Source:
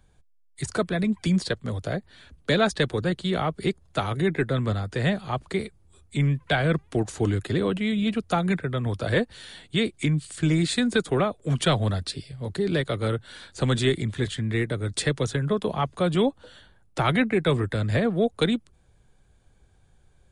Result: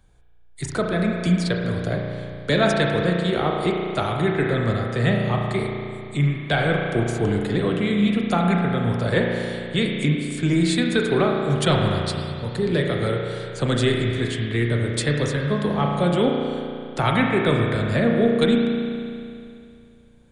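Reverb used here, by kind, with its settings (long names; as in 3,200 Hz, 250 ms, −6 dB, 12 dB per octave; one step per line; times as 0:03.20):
spring reverb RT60 2.5 s, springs 34 ms, chirp 75 ms, DRR 0 dB
level +1 dB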